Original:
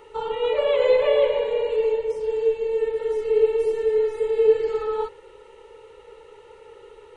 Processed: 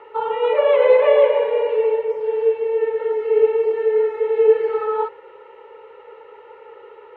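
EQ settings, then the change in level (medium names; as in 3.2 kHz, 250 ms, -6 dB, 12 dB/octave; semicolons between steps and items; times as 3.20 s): band-pass 110–3300 Hz; three-band isolator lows -14 dB, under 450 Hz, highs -16 dB, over 2.5 kHz; +8.0 dB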